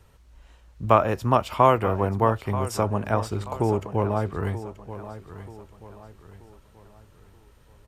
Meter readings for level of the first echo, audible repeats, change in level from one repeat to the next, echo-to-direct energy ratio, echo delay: -13.5 dB, 3, -8.0 dB, -13.0 dB, 0.932 s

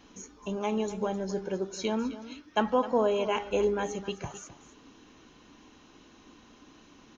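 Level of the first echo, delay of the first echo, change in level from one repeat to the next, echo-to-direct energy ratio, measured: -14.5 dB, 0.26 s, no steady repeat, -14.5 dB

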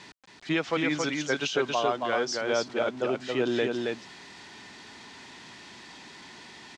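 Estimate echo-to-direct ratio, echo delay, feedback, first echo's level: -3.5 dB, 0.274 s, no steady repeat, -3.5 dB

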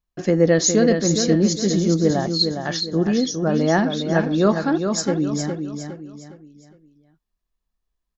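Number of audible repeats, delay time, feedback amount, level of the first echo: 4, 0.41 s, 37%, -6.5 dB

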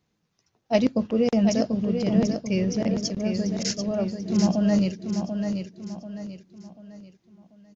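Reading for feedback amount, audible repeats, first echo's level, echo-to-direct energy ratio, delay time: 38%, 4, -6.5 dB, -6.0 dB, 0.739 s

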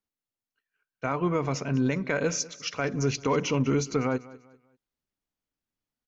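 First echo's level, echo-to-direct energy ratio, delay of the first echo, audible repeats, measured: -19.5 dB, -19.0 dB, 0.196 s, 2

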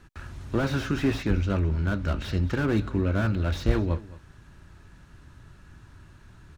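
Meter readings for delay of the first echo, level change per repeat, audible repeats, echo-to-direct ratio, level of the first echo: 0.217 s, no steady repeat, 1, -19.0 dB, -19.0 dB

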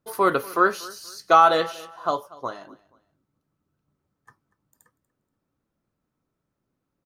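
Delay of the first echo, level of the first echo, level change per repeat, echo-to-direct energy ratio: 0.239 s, -21.0 dB, -11.0 dB, -20.5 dB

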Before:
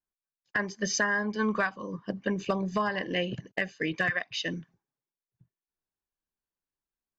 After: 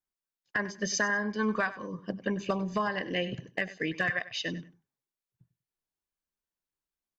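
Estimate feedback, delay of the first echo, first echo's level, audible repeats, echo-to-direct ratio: 21%, 97 ms, -16.0 dB, 2, -16.0 dB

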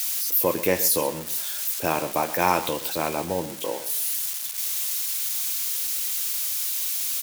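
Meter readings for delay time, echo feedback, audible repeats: 0.127 s, 20%, 2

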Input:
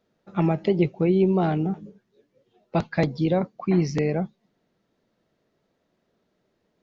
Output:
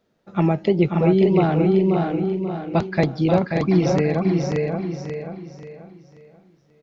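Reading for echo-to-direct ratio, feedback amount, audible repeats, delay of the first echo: -1.5 dB, no steady repeat, 10, 0.535 s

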